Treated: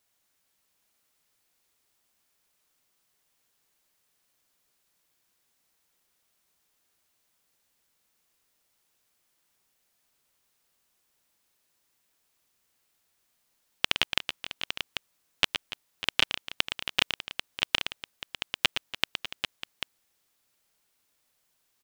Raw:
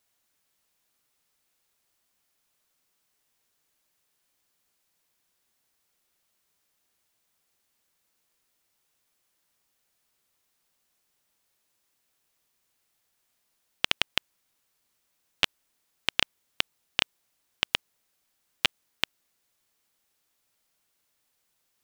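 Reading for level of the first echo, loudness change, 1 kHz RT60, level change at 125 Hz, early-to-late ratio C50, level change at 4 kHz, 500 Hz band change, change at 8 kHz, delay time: -8.0 dB, -0.5 dB, none, +1.0 dB, none, +1.5 dB, +1.5 dB, +1.5 dB, 0.116 s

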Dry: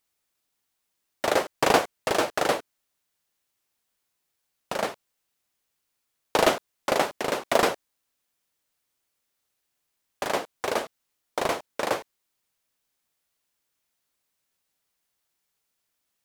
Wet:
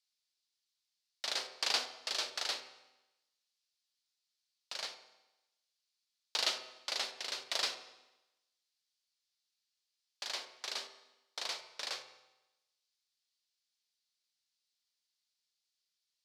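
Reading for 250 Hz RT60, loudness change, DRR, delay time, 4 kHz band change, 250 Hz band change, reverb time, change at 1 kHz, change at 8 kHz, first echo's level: 1.0 s, -10.5 dB, 7.5 dB, none, -2.0 dB, -28.0 dB, 1.0 s, -19.5 dB, -7.0 dB, none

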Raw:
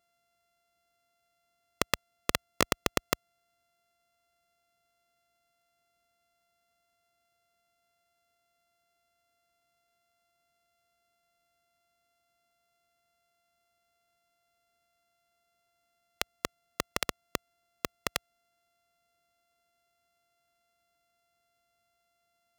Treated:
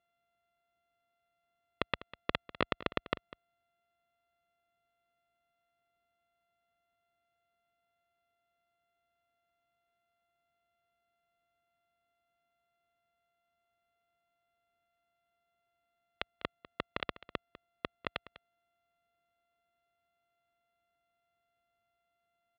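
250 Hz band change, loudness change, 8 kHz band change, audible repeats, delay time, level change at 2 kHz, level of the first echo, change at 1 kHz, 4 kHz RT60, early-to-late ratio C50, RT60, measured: -4.5 dB, -6.0 dB, under -35 dB, 1, 0.199 s, -4.5 dB, -17.0 dB, -4.5 dB, none, none, none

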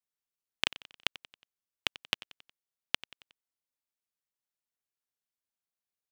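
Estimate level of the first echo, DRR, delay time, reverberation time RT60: -18.0 dB, none, 91 ms, none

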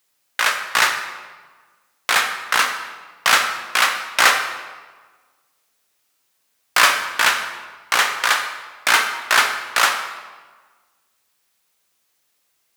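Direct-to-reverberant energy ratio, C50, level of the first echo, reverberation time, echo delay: 4.5 dB, 7.0 dB, none, 1.4 s, none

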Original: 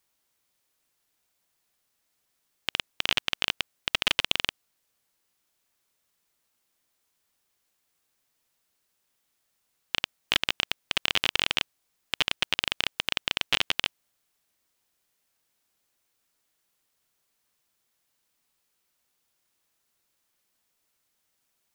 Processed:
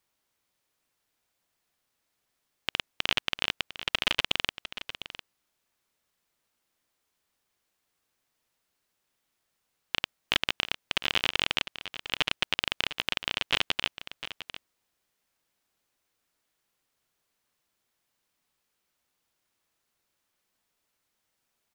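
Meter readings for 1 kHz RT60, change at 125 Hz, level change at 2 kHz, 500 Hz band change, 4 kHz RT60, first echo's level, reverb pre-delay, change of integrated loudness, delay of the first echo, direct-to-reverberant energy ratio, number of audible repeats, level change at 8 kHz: none, 0.0 dB, -1.0 dB, 0.0 dB, none, -13.0 dB, none, -2.0 dB, 0.703 s, none, 1, -4.0 dB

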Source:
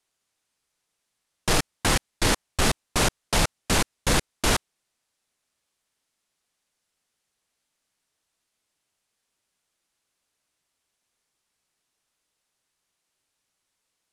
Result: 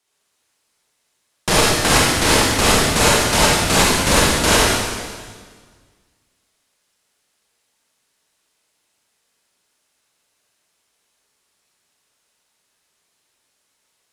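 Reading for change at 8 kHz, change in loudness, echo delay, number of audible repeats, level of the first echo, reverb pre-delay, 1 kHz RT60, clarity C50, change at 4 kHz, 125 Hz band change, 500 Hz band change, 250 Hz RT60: +10.5 dB, +10.0 dB, none, none, none, 36 ms, 1.6 s, -3.0 dB, +10.5 dB, +7.5 dB, +11.0 dB, 1.8 s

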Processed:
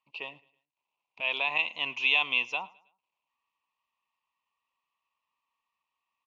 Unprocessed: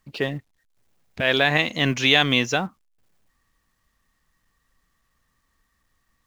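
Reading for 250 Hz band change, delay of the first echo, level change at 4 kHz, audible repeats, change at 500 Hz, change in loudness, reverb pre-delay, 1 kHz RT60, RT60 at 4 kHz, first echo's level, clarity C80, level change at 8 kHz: -26.0 dB, 0.107 s, -9.5 dB, 2, -18.0 dB, -7.0 dB, none, none, none, -23.5 dB, none, under -20 dB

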